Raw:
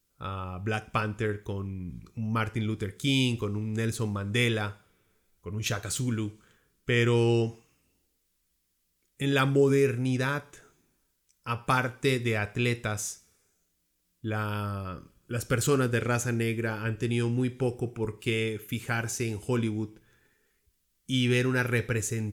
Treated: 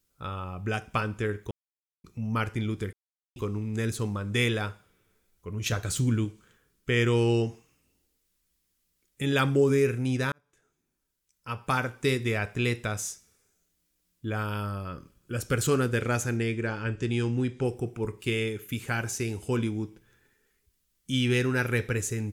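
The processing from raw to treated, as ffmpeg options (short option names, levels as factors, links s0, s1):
-filter_complex "[0:a]asettb=1/sr,asplit=3[s0][s1][s2];[s0]atrim=end=5.724[s3];[s1]atrim=start=5.72:end=6.25,asetpts=PTS-STARTPTS,afade=t=in:d=0.004:c=qsin,afade=t=out:st=0.526:d=0.004:c=qsin,lowshelf=f=250:g=6.5[s4];[s2]atrim=start=6.246[s5];[s3][s4]acrossfade=d=0.004:c1=hsin:c2=qsin[s6];[s6][s5]acrossfade=d=0.004:c1=qsin:c2=hsin,asettb=1/sr,asplit=3[s7][s8][s9];[s7]atrim=end=16.374[s10];[s8]atrim=start=16.37:end=17.65,asetpts=PTS-STARTPTS,afade=t=in:d=0.004:c=qsin,afade=t=out:st=1.276:d=0.004:c=qsin,lowpass=f=8400:w=0.5412,lowpass=f=8400:w=1.3066[s11];[s9]atrim=start=17.646[s12];[s10][s11]acrossfade=d=0.004:c1=hsin:c2=qsin[s13];[s13][s12]acrossfade=d=0.004:c1=qsin:c2=hsin,asplit=6[s14][s15][s16][s17][s18][s19];[s14]atrim=end=1.51,asetpts=PTS-STARTPTS,afade=t=out:st=1.506:d=0.004:c=hsin[s20];[s15]atrim=start=1.51:end=2.04,asetpts=PTS-STARTPTS,volume=0[s21];[s16]atrim=start=2.04:end=2.93,asetpts=PTS-STARTPTS,afade=t=in:d=0.004:c=hsin,afade=t=out:st=0.886:d=0.004:c=hsin[s22];[s17]atrim=start=2.93:end=3.36,asetpts=PTS-STARTPTS,volume=0[s23];[s18]atrim=start=3.36:end=10.32,asetpts=PTS-STARTPTS,afade=t=in:d=0.004:c=hsin,afade=t=out:st=6.956:d=0.004:c=hsin[s24];[s19]atrim=start=10.32,asetpts=PTS-STARTPTS,afade=t=in:d=1.73[s25];[s20][s21][s22][s23][s24][s25]concat=n=6:v=0:a=1"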